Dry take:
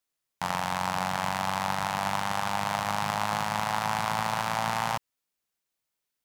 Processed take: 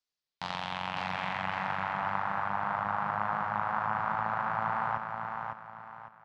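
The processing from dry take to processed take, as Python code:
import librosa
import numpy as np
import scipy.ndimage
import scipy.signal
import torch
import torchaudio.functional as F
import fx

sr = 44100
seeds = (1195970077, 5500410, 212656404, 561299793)

y = fx.filter_sweep_lowpass(x, sr, from_hz=5000.0, to_hz=1400.0, start_s=0.13, end_s=2.02, q=2.4)
y = fx.echo_feedback(y, sr, ms=554, feedback_pct=34, wet_db=-5.0)
y = y * librosa.db_to_amplitude(-7.5)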